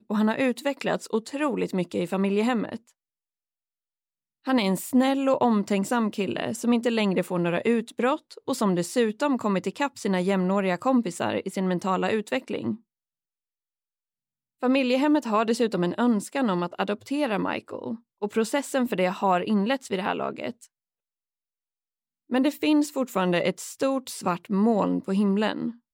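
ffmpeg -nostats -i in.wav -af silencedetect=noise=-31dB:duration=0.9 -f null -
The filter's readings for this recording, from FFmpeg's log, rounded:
silence_start: 2.76
silence_end: 4.47 | silence_duration: 1.71
silence_start: 12.74
silence_end: 14.63 | silence_duration: 1.88
silence_start: 20.51
silence_end: 22.32 | silence_duration: 1.81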